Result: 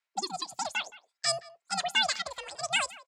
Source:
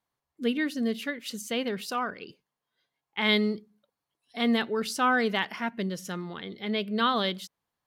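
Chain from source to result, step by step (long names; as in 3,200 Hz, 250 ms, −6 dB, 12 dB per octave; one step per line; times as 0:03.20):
single-sideband voice off tune −160 Hz 410–3,300 Hz
change of speed 2.56×
far-end echo of a speakerphone 170 ms, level −18 dB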